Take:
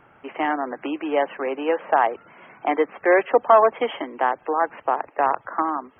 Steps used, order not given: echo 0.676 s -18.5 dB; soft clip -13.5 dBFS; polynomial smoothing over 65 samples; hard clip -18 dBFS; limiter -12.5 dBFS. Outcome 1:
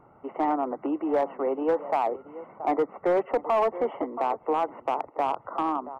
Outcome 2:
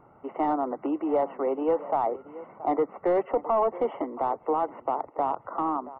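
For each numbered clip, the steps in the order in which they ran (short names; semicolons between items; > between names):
echo > limiter > polynomial smoothing > soft clip > hard clip; limiter > echo > soft clip > hard clip > polynomial smoothing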